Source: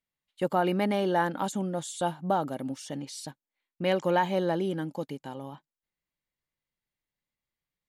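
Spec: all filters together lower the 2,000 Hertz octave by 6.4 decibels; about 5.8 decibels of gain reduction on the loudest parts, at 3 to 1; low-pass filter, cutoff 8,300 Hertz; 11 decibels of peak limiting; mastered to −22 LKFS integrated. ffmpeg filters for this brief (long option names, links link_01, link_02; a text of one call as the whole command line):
ffmpeg -i in.wav -af "lowpass=8300,equalizer=frequency=2000:width_type=o:gain=-8.5,acompressor=threshold=-29dB:ratio=3,volume=17dB,alimiter=limit=-12.5dB:level=0:latency=1" out.wav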